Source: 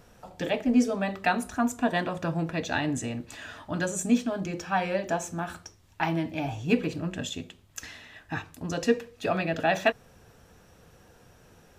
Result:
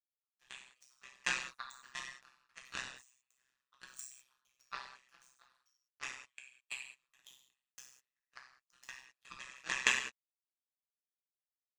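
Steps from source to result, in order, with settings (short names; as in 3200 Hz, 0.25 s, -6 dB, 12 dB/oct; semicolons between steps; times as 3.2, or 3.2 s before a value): brick-wall FIR band-pass 1000–10000 Hz; comb 1.6 ms, depth 60%; power-law curve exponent 3; non-linear reverb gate 0.23 s falling, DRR -3.5 dB; AM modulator 130 Hz, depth 90%; gain +6.5 dB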